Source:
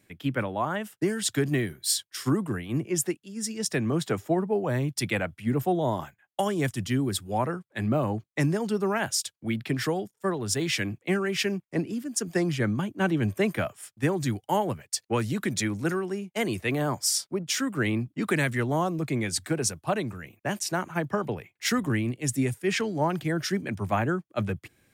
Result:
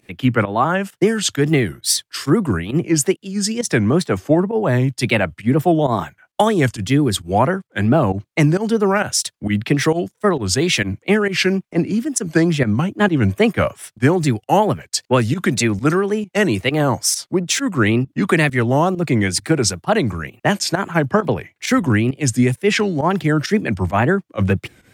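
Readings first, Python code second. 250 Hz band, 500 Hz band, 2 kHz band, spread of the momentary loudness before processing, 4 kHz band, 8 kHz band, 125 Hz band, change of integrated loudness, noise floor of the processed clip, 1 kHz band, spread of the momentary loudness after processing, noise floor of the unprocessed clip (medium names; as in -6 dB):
+10.5 dB, +10.5 dB, +10.0 dB, 5 LU, +9.0 dB, +8.0 dB, +10.5 dB, +10.0 dB, -67 dBFS, +10.5 dB, 4 LU, -75 dBFS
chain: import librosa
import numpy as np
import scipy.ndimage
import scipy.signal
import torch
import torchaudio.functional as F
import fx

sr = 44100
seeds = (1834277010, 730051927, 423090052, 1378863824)

p1 = fx.high_shelf(x, sr, hz=9200.0, db=-9.0)
p2 = fx.rider(p1, sr, range_db=10, speed_s=0.5)
p3 = p1 + (p2 * 10.0 ** (1.0 / 20.0))
p4 = fx.wow_flutter(p3, sr, seeds[0], rate_hz=2.1, depth_cents=150.0)
p5 = fx.volume_shaper(p4, sr, bpm=133, per_beat=1, depth_db=-15, release_ms=100.0, shape='fast start')
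y = p5 * 10.0 ** (4.5 / 20.0)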